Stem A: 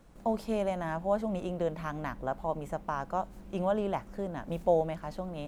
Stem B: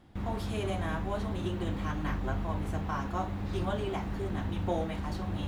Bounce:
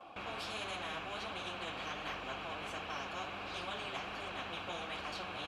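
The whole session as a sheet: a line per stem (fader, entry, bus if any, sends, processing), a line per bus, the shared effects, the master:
-9.0 dB, 0.00 s, no send, none
-0.5 dB, 6.9 ms, no send, tilt shelf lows -5 dB, about 760 Hz; band-stop 3.6 kHz, Q 24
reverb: none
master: flange 1.4 Hz, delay 1.6 ms, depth 6.4 ms, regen +47%; vowel filter a; spectrum-flattening compressor 4:1

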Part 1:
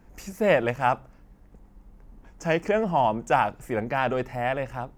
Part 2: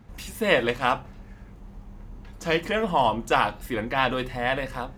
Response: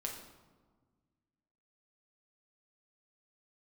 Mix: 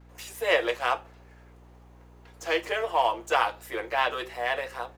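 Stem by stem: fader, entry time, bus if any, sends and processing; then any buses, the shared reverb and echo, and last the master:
-16.0 dB, 0.00 s, no send, waveshaping leveller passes 2; tilt EQ +2 dB/octave
-2.5 dB, 5.3 ms, no send, none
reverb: none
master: steep high-pass 350 Hz 48 dB/octave; hum 60 Hz, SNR 23 dB

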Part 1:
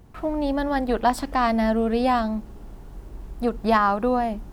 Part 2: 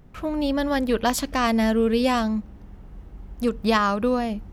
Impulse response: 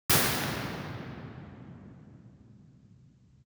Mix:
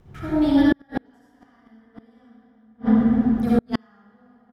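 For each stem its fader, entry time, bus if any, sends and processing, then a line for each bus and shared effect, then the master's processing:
-6.0 dB, 0.00 s, send -9 dB, low-pass 5.6 kHz 12 dB/octave
-4.0 dB, 0.6 ms, send -14.5 dB, auto duck -7 dB, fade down 1.35 s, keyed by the first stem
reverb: on, RT60 3.6 s, pre-delay 47 ms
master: bass shelf 370 Hz -4 dB; inverted gate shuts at -7 dBFS, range -41 dB

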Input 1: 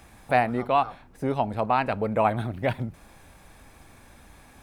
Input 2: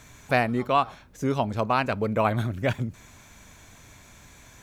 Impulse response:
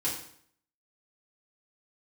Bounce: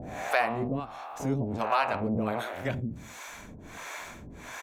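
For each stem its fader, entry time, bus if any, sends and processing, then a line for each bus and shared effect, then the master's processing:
+1.5 dB, 0.00 s, no send, spectrogram pixelated in time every 400 ms; low-pass 2.8 kHz
0.0 dB, 19 ms, no send, bass shelf 270 Hz -9.5 dB; three bands compressed up and down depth 70%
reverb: none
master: harmonic tremolo 1.4 Hz, depth 100%, crossover 450 Hz

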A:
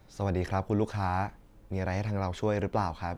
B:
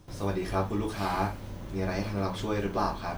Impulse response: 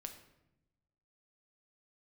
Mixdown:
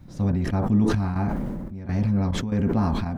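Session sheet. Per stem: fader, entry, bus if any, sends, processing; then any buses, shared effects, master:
0.0 dB, 0.00 s, no send, resonant low shelf 310 Hz +9.5 dB, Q 3; compression 1.5:1, threshold -26 dBFS, peak gain reduction 5 dB
-7.0 dB, 0.00 s, polarity flipped, no send, elliptic band-pass 150–2000 Hz; tilt EQ -3.5 dB/octave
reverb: none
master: trance gate "xxx..xxxx..xx" 143 bpm -12 dB; decay stretcher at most 25 dB/s

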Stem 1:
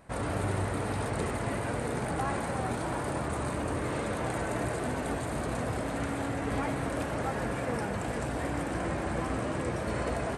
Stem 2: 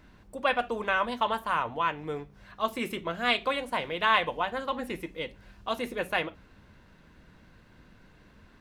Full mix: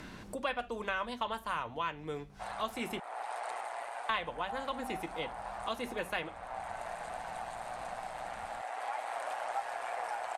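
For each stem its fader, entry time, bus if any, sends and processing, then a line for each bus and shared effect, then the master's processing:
0.0 dB, 2.30 s, no send, ladder high-pass 690 Hz, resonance 70%; peaking EQ 1.9 kHz +6 dB 2.7 oct; AM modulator 120 Hz, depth 35%; auto duck -8 dB, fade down 0.60 s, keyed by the second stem
-6.5 dB, 0.00 s, muted 3.00–4.09 s, no send, Bessel low-pass 8.6 kHz, order 2; treble shelf 5.8 kHz +12 dB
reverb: none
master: bass shelf 71 Hz +6.5 dB; three bands compressed up and down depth 70%

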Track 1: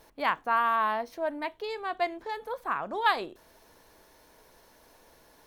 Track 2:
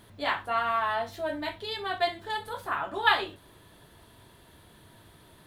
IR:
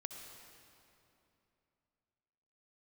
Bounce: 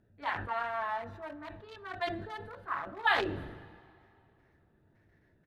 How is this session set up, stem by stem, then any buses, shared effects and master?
-4.0 dB, 0.00 s, send -9 dB, gate with hold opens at -47 dBFS; auto-wah 740–1900 Hz, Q 6.9, down, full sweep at -21.5 dBFS
-12.5 dB, 0.4 ms, polarity flipped, send -11 dB, local Wiener filter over 41 samples; peaking EQ 1.8 kHz +7.5 dB 1.1 oct; decay stretcher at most 53 dB/s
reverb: on, RT60 2.9 s, pre-delay 57 ms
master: none

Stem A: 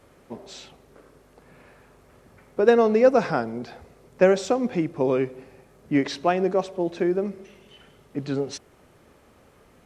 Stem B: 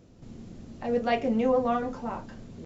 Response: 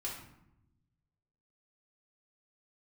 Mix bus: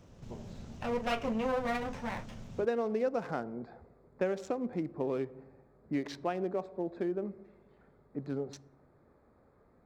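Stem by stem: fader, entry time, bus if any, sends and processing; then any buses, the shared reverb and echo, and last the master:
-9.0 dB, 0.00 s, send -20.5 dB, local Wiener filter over 15 samples
+0.5 dB, 0.00 s, no send, comb filter that takes the minimum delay 0.34 ms; peaking EQ 320 Hz -9 dB 0.98 oct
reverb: on, RT60 0.85 s, pre-delay 3 ms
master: compression 2.5:1, threshold -30 dBFS, peak gain reduction 7.5 dB

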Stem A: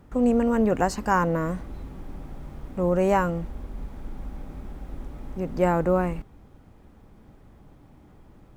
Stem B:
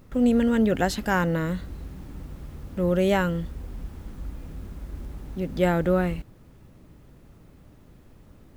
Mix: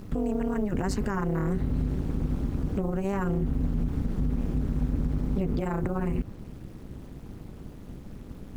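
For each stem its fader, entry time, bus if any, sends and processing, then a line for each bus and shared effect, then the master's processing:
+2.5 dB, 0.00 s, no send, peak limiter -19.5 dBFS, peak gain reduction 10.5 dB; word length cut 10-bit, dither none
+2.5 dB, 0.00 s, no send, low-pass that closes with the level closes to 710 Hz, closed at -21 dBFS; bass shelf 210 Hz +8.5 dB; compressor with a negative ratio -25 dBFS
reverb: none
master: AM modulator 200 Hz, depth 90%; peak limiter -17.5 dBFS, peak gain reduction 6.5 dB

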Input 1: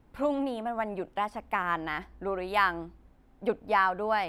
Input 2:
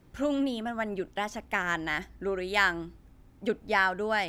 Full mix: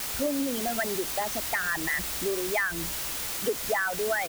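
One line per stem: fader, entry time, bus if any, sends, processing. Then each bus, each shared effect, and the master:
-14.0 dB, 0.00 s, no send, none
+3.0 dB, 1.2 ms, no send, resonances exaggerated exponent 3; word length cut 6-bit, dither triangular; compression, threshold -27 dBFS, peak gain reduction 7.5 dB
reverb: none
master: none

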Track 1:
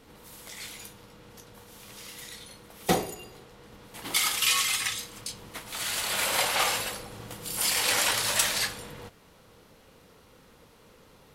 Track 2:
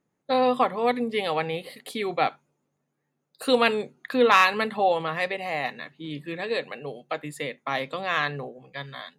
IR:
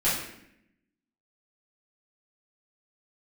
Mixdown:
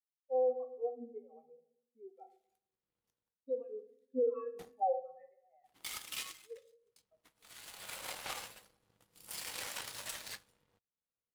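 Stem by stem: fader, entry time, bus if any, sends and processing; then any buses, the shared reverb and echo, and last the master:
-4.5 dB, 1.70 s, no send, power-law waveshaper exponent 2; auto duck -20 dB, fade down 0.30 s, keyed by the second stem
-2.0 dB, 0.00 s, send -19 dB, peak limiter -14 dBFS, peak gain reduction 9.5 dB; spectral contrast expander 4:1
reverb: on, RT60 0.75 s, pre-delay 4 ms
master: peak limiter -24.5 dBFS, peak gain reduction 9.5 dB

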